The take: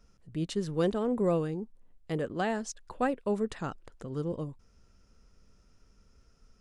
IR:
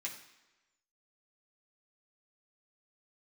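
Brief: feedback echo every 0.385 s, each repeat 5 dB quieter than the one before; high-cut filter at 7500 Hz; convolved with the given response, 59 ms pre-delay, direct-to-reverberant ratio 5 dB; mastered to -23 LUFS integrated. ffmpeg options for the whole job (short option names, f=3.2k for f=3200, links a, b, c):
-filter_complex "[0:a]lowpass=7.5k,aecho=1:1:385|770|1155|1540|1925|2310|2695:0.562|0.315|0.176|0.0988|0.0553|0.031|0.0173,asplit=2[a][b];[1:a]atrim=start_sample=2205,adelay=59[c];[b][c]afir=irnorm=-1:irlink=0,volume=-5dB[d];[a][d]amix=inputs=2:normalize=0,volume=8dB"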